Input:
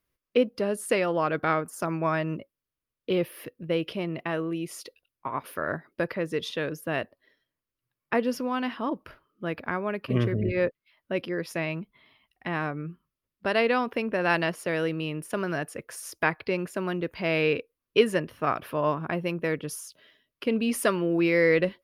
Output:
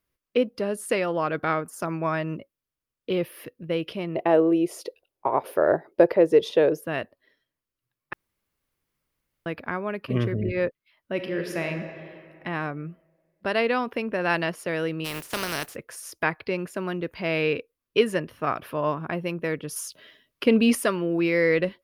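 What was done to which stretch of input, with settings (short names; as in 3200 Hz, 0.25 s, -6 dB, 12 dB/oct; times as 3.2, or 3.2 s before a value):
4.15–6.85 band shelf 540 Hz +13 dB
8.13–9.46 room tone
11.12–11.66 reverb throw, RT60 2.5 s, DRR 3.5 dB
15.04–15.74 spectral contrast lowered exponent 0.37
19.76–20.75 gain +7 dB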